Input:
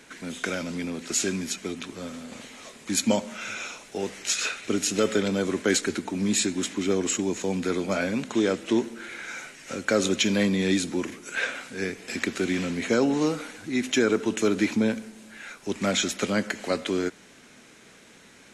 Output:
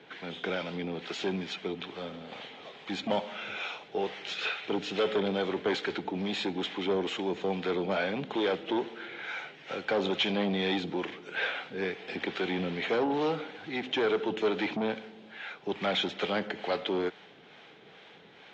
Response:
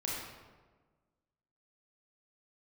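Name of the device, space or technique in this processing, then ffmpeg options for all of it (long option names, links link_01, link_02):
guitar amplifier with harmonic tremolo: -filter_complex "[0:a]acrossover=split=550[link_01][link_02];[link_01]aeval=exprs='val(0)*(1-0.5/2+0.5/2*cos(2*PI*2.3*n/s))':channel_layout=same[link_03];[link_02]aeval=exprs='val(0)*(1-0.5/2-0.5/2*cos(2*PI*2.3*n/s))':channel_layout=same[link_04];[link_03][link_04]amix=inputs=2:normalize=0,asoftclip=type=tanh:threshold=-24.5dB,highpass=100,equalizer=frequency=100:width_type=q:width=4:gain=-3,equalizer=frequency=160:width_type=q:width=4:gain=3,equalizer=frequency=240:width_type=q:width=4:gain=-8,equalizer=frequency=440:width_type=q:width=4:gain=5,equalizer=frequency=790:width_type=q:width=4:gain=9,equalizer=frequency=3300:width_type=q:width=4:gain=7,lowpass=frequency=3900:width=0.5412,lowpass=frequency=3900:width=1.3066"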